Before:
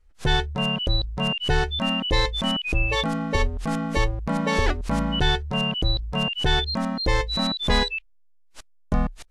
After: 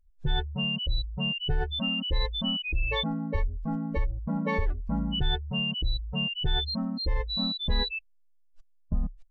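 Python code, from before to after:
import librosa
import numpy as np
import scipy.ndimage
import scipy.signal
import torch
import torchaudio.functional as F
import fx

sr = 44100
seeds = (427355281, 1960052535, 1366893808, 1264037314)

y = fx.spec_expand(x, sr, power=2.1)
y = y * librosa.db_to_amplitude(-4.5)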